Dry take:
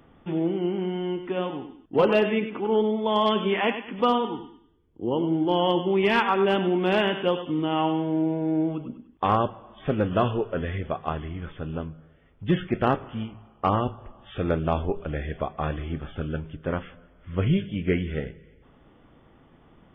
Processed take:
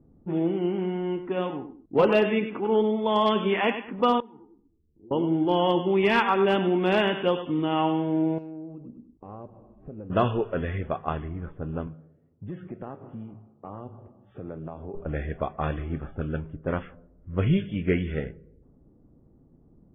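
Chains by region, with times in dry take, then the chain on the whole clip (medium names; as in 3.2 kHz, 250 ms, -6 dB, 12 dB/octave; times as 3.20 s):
4.20–5.11 s: low-pass 1.5 kHz 6 dB/octave + compression 2.5:1, threshold -50 dBFS + three-phase chorus
8.38–10.10 s: median filter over 15 samples + peaking EQ 2.6 kHz +9.5 dB 0.24 oct + compression 3:1, threshold -40 dBFS
11.87–14.94 s: high-pass 91 Hz 24 dB/octave + treble shelf 2.4 kHz +11.5 dB + compression 4:1, threshold -34 dBFS
whole clip: band-stop 3.1 kHz, Q 17; level-controlled noise filter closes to 310 Hz, open at -20.5 dBFS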